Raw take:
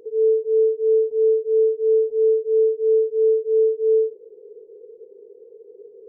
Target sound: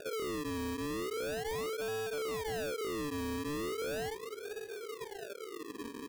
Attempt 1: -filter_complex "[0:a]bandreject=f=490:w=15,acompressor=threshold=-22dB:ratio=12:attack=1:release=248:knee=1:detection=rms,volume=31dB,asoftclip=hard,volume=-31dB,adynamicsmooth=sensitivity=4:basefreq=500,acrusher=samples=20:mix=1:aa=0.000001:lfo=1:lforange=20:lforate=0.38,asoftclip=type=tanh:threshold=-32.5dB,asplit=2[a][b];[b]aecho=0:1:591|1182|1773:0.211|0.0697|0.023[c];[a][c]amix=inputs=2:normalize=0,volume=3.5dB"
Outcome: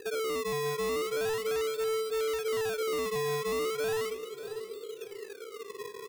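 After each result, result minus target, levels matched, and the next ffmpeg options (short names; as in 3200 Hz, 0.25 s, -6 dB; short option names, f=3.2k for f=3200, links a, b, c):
decimation with a swept rate: distortion -16 dB; echo-to-direct +10 dB; soft clip: distortion -9 dB
-filter_complex "[0:a]bandreject=f=490:w=15,acompressor=threshold=-22dB:ratio=12:attack=1:release=248:knee=1:detection=rms,volume=31dB,asoftclip=hard,volume=-31dB,adynamicsmooth=sensitivity=4:basefreq=500,acrusher=samples=42:mix=1:aa=0.000001:lfo=1:lforange=42:lforate=0.38,asoftclip=type=tanh:threshold=-32.5dB,asplit=2[a][b];[b]aecho=0:1:591|1182|1773:0.211|0.0697|0.023[c];[a][c]amix=inputs=2:normalize=0,volume=3.5dB"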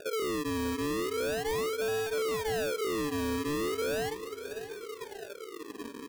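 echo-to-direct +10 dB; soft clip: distortion -9 dB
-filter_complex "[0:a]bandreject=f=490:w=15,acompressor=threshold=-22dB:ratio=12:attack=1:release=248:knee=1:detection=rms,volume=31dB,asoftclip=hard,volume=-31dB,adynamicsmooth=sensitivity=4:basefreq=500,acrusher=samples=42:mix=1:aa=0.000001:lfo=1:lforange=42:lforate=0.38,asoftclip=type=tanh:threshold=-32.5dB,asplit=2[a][b];[b]aecho=0:1:591|1182:0.0668|0.0221[c];[a][c]amix=inputs=2:normalize=0,volume=3.5dB"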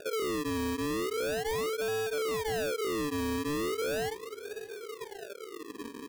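soft clip: distortion -9 dB
-filter_complex "[0:a]bandreject=f=490:w=15,acompressor=threshold=-22dB:ratio=12:attack=1:release=248:knee=1:detection=rms,volume=31dB,asoftclip=hard,volume=-31dB,adynamicsmooth=sensitivity=4:basefreq=500,acrusher=samples=42:mix=1:aa=0.000001:lfo=1:lforange=42:lforate=0.38,asoftclip=type=tanh:threshold=-39.5dB,asplit=2[a][b];[b]aecho=0:1:591|1182:0.0668|0.0221[c];[a][c]amix=inputs=2:normalize=0,volume=3.5dB"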